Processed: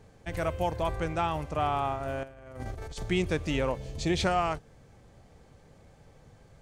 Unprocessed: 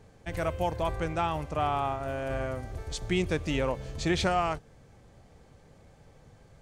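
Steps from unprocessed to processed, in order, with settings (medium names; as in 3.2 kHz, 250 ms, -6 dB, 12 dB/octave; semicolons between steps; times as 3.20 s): 2.23–3.03 s: compressor with a negative ratio -39 dBFS, ratio -0.5; 3.78–4.20 s: peaking EQ 1.4 kHz -9.5 dB 0.77 oct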